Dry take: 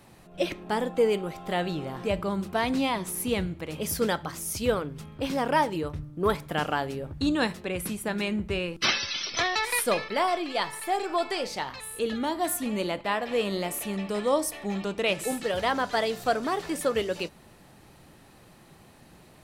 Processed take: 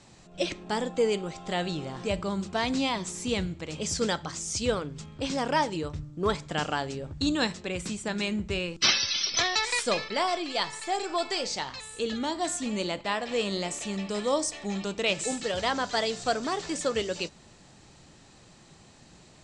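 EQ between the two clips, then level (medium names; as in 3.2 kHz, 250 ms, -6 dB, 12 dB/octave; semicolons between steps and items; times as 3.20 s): elliptic low-pass 7.7 kHz, stop band 50 dB; tone controls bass +2 dB, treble +11 dB; -1.5 dB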